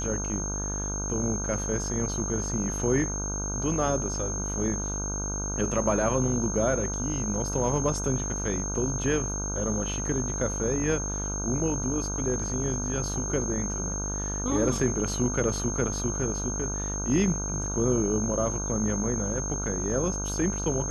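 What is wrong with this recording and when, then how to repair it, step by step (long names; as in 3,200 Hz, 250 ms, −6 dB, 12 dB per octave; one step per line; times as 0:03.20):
mains buzz 50 Hz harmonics 31 −33 dBFS
whistle 6,400 Hz −32 dBFS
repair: hum removal 50 Hz, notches 31
notch filter 6,400 Hz, Q 30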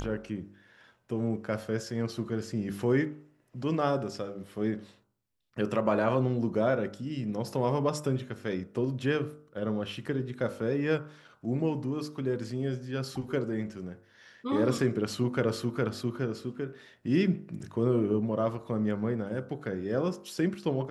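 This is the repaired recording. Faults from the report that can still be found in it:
none of them is left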